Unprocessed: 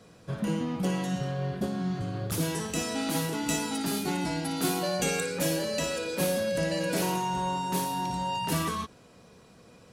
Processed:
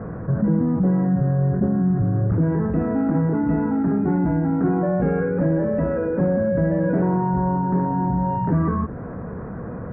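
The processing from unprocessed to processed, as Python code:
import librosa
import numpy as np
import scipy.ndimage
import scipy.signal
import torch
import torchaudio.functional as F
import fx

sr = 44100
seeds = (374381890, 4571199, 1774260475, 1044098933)

p1 = fx.dynamic_eq(x, sr, hz=1200.0, q=0.79, threshold_db=-46.0, ratio=4.0, max_db=-5)
p2 = fx.quant_dither(p1, sr, seeds[0], bits=8, dither='triangular')
p3 = p1 + (p2 * 10.0 ** (-7.0 / 20.0))
p4 = scipy.signal.sosfilt(scipy.signal.butter(8, 1700.0, 'lowpass', fs=sr, output='sos'), p3)
p5 = fx.low_shelf(p4, sr, hz=280.0, db=9.5)
y = fx.env_flatten(p5, sr, amount_pct=50)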